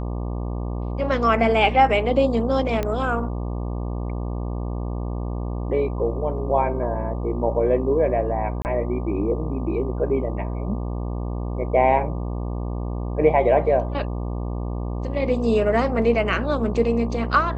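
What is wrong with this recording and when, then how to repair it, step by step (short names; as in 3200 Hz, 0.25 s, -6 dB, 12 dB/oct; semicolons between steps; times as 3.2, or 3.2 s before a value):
buzz 60 Hz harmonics 20 -27 dBFS
2.83 pop -12 dBFS
8.62–8.65 gap 29 ms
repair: de-click; de-hum 60 Hz, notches 20; interpolate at 8.62, 29 ms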